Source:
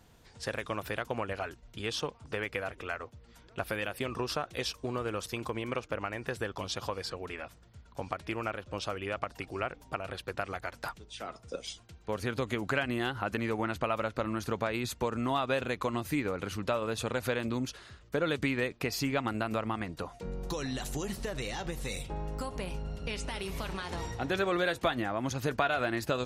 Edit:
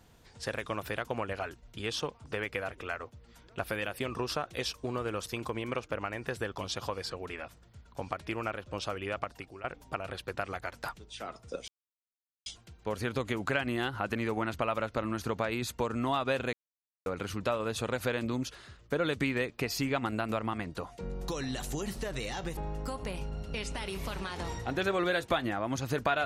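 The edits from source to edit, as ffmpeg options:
-filter_complex "[0:a]asplit=6[s0][s1][s2][s3][s4][s5];[s0]atrim=end=9.64,asetpts=PTS-STARTPTS,afade=t=out:st=9.21:d=0.43:silence=0.158489[s6];[s1]atrim=start=9.64:end=11.68,asetpts=PTS-STARTPTS,afade=t=in:d=0.004:c=hsin:silence=0.158489,afade=t=out:st=2.036:d=0.004:c=hsin,apad=pad_dur=0.78[s7];[s2]atrim=start=11.68:end=15.75,asetpts=PTS-STARTPTS,afade=t=in:d=0.004:c=hsin,afade=t=out:st=4.066:d=0.004:c=hsin[s8];[s3]atrim=start=15.75:end=16.28,asetpts=PTS-STARTPTS,volume=0[s9];[s4]atrim=start=16.28:end=21.792,asetpts=PTS-STARTPTS,afade=t=in:d=0.004:c=hsin[s10];[s5]atrim=start=22.098[s11];[s6][s7][s8][s9][s10]concat=n=5:v=0:a=1[s12];[s12][s11]acrossfade=d=0.004:c1=hsin:c2=hsin"

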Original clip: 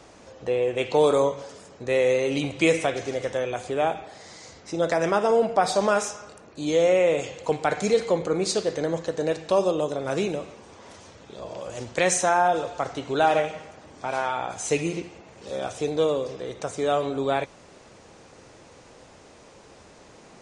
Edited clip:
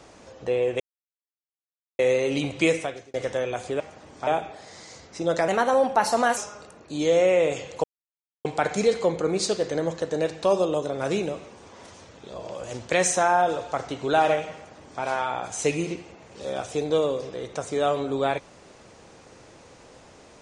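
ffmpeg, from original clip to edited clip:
-filter_complex "[0:a]asplit=9[s0][s1][s2][s3][s4][s5][s6][s7][s8];[s0]atrim=end=0.8,asetpts=PTS-STARTPTS,afade=t=out:st=0.796:d=0.004:c=hsin[s9];[s1]atrim=start=0.8:end=1.99,asetpts=PTS-STARTPTS,volume=0[s10];[s2]atrim=start=1.99:end=3.14,asetpts=PTS-STARTPTS,afade=t=in:d=0.004:c=hsin,afade=t=out:st=0.62:d=0.53[s11];[s3]atrim=start=3.14:end=3.802,asetpts=PTS-STARTPTS,afade=t=in:d=0.004:c=hsin[s12];[s4]atrim=start=13.608:end=14.082[s13];[s5]atrim=start=3.798:end=5.014[s14];[s6]atrim=start=5.01:end=6.04,asetpts=PTS-STARTPTS,asetrate=51156,aresample=44100[s15];[s7]atrim=start=6.036:end=7.51,asetpts=PTS-STARTPTS,afade=t=out:st=1.47:d=0.004:c=hsin,apad=pad_dur=0.61[s16];[s8]atrim=start=7.51,asetpts=PTS-STARTPTS,afade=t=in:d=0.004:c=hsin[s17];[s9][s10][s11][s12]concat=n=4:v=0:a=1[s18];[s18][s13]acrossfade=d=0.004:c1=hsin:c2=hsin[s19];[s19][s14]acrossfade=d=0.004:c1=hsin:c2=hsin[s20];[s20][s15]acrossfade=d=0.004:c1=hsin:c2=hsin[s21];[s16][s17]concat=n=2:v=0:a=1[s22];[s21][s22]acrossfade=d=0.004:c1=hsin:c2=hsin"

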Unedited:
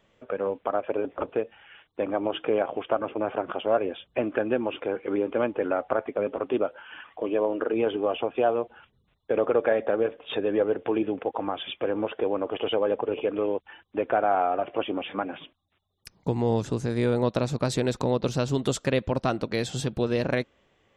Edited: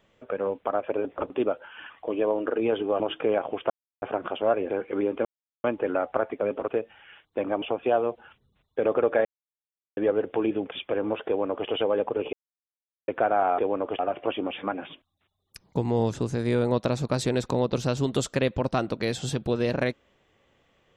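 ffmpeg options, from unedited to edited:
-filter_complex "[0:a]asplit=16[s0][s1][s2][s3][s4][s5][s6][s7][s8][s9][s10][s11][s12][s13][s14][s15];[s0]atrim=end=1.302[s16];[s1]atrim=start=6.438:end=8.142[s17];[s2]atrim=start=2.238:end=2.94,asetpts=PTS-STARTPTS,afade=t=out:st=0.698:d=0.004:c=hsin[s18];[s3]atrim=start=2.94:end=3.26,asetpts=PTS-STARTPTS,volume=0[s19];[s4]atrim=start=3.26:end=3.942,asetpts=PTS-STARTPTS,afade=t=in:d=0.004:c=hsin[s20];[s5]atrim=start=4.848:end=5.4,asetpts=PTS-STARTPTS,afade=t=out:st=0.548:d=0.004:c=hsin,apad=pad_dur=0.39[s21];[s6]atrim=start=5.4:end=6.442,asetpts=PTS-STARTPTS,afade=t=in:d=0.004:c=hsin[s22];[s7]atrim=start=1.298:end=2.242[s23];[s8]atrim=start=8.138:end=9.77,asetpts=PTS-STARTPTS,afade=t=out:st=1.628:d=0.004:c=hsin[s24];[s9]atrim=start=9.77:end=10.49,asetpts=PTS-STARTPTS,volume=0[s25];[s10]atrim=start=10.49:end=11.242,asetpts=PTS-STARTPTS,afade=t=in:d=0.004:c=hsin[s26];[s11]atrim=start=11.638:end=13.25,asetpts=PTS-STARTPTS,afade=t=out:st=1.608:d=0.004:c=hsin[s27];[s12]atrim=start=13.25:end=14,asetpts=PTS-STARTPTS,volume=0[s28];[s13]atrim=start=14:end=14.502,asetpts=PTS-STARTPTS,afade=t=in:d=0.004:c=hsin[s29];[s14]atrim=start=12.188:end=12.602[s30];[s15]atrim=start=14.498[s31];[s16][s17]acrossfade=d=0.004:c1=hsin:c2=hsin[s32];[s18][s19][s20]concat=n=3:v=0:a=1[s33];[s32][s33]acrossfade=d=0.004:c1=hsin:c2=hsin[s34];[s21][s22]concat=n=2:v=0:a=1[s35];[s34][s35]acrossfade=d=0.004:c1=hsin:c2=hsin[s36];[s36][s23]acrossfade=d=0.004:c1=hsin:c2=hsin[s37];[s24][s25][s26]concat=n=3:v=0:a=1[s38];[s37][s38]acrossfade=d=0.004:c1=hsin:c2=hsin[s39];[s27][s28][s29]concat=n=3:v=0:a=1[s40];[s39][s40]acrossfade=d=0.004:c1=hsin:c2=hsin[s41];[s41][s30]acrossfade=d=0.004:c1=hsin:c2=hsin[s42];[s42][s31]acrossfade=d=0.004:c1=hsin:c2=hsin"

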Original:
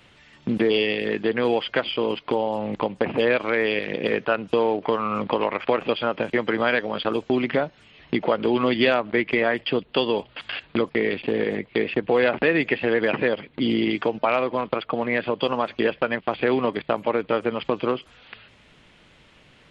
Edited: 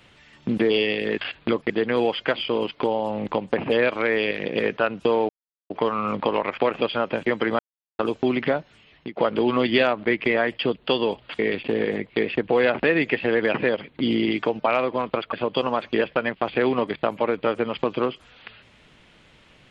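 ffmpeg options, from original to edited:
-filter_complex "[0:a]asplit=9[s0][s1][s2][s3][s4][s5][s6][s7][s8];[s0]atrim=end=1.182[s9];[s1]atrim=start=10.458:end=10.982[s10];[s2]atrim=start=1.178:end=4.77,asetpts=PTS-STARTPTS,afade=t=out:st=3.588:d=0.004:c=hsin,apad=pad_dur=0.41[s11];[s3]atrim=start=4.77:end=6.66,asetpts=PTS-STARTPTS,afade=t=in:d=0.004:c=hsin,afade=t=out:st=1.886:d=0.004:c=hsin[s12];[s4]atrim=start=6.66:end=7.06,asetpts=PTS-STARTPTS,volume=0[s13];[s5]atrim=start=7.06:end=8.24,asetpts=PTS-STARTPTS,afade=t=in:d=0.004:c=hsin,afade=t=out:st=0.53:d=0.65:c=qsin:silence=0.0794328[s14];[s6]atrim=start=8.24:end=10.462,asetpts=PTS-STARTPTS,afade=t=in:d=0.004:c=hsin:silence=0.0794328[s15];[s7]atrim=start=10.978:end=14.922[s16];[s8]atrim=start=15.188[s17];[s9][s10]acrossfade=d=0.004:c1=hsin:c2=hsin[s18];[s11][s12][s13][s14][s15]concat=n=5:v=0:a=1[s19];[s18][s19]acrossfade=d=0.004:c1=hsin:c2=hsin[s20];[s20][s16]acrossfade=d=0.004:c1=hsin:c2=hsin[s21];[s21][s17]acrossfade=d=0.004:c1=hsin:c2=hsin"

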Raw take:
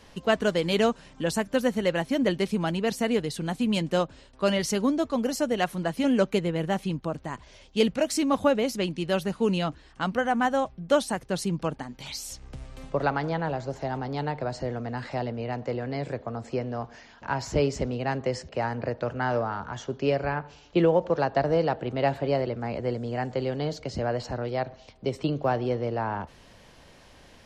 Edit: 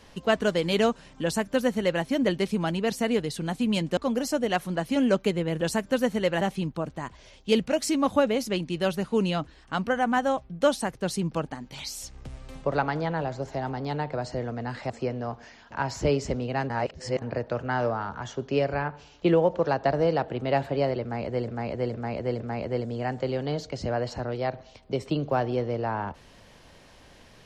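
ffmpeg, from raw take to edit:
-filter_complex "[0:a]asplit=10[s0][s1][s2][s3][s4][s5][s6][s7][s8][s9];[s0]atrim=end=3.972[s10];[s1]atrim=start=5.048:end=6.692[s11];[s2]atrim=start=1.228:end=2.032[s12];[s3]atrim=start=6.688:end=15.182[s13];[s4]atrim=start=16.408:end=18.212[s14];[s5]atrim=start=18.208:end=18.732,asetpts=PTS-STARTPTS,areverse[s15];[s6]atrim=start=18.728:end=22.992[s16];[s7]atrim=start=22.528:end=22.992[s17];[s8]atrim=start=22.528:end=22.992[s18];[s9]atrim=start=22.528[s19];[s10][s11]acrossfade=d=0.004:c1=hsin:c2=hsin[s20];[s20][s12]acrossfade=d=0.004:c1=hsin:c2=hsin[s21];[s21][s13]acrossfade=d=0.004:c1=hsin:c2=hsin[s22];[s22][s14]acrossfade=d=0.004:c1=hsin:c2=hsin[s23];[s23][s15]acrossfade=d=0.004:c1=hsin:c2=hsin[s24];[s24][s16]acrossfade=d=0.004:c1=hsin:c2=hsin[s25];[s25][s17]acrossfade=d=0.004:c1=hsin:c2=hsin[s26];[s26][s18]acrossfade=d=0.004:c1=hsin:c2=hsin[s27];[s27][s19]acrossfade=d=0.004:c1=hsin:c2=hsin"

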